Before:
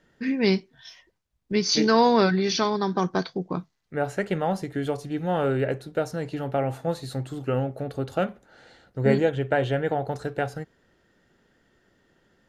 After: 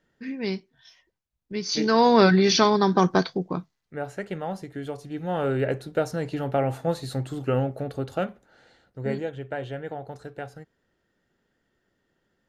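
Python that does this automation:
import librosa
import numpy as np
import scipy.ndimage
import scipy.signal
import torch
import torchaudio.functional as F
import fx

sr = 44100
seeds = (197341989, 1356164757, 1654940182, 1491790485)

y = fx.gain(x, sr, db=fx.line((1.54, -7.5), (2.32, 5.0), (3.13, 5.0), (4.04, -6.0), (4.93, -6.0), (5.79, 1.5), (7.66, 1.5), (9.25, -9.0)))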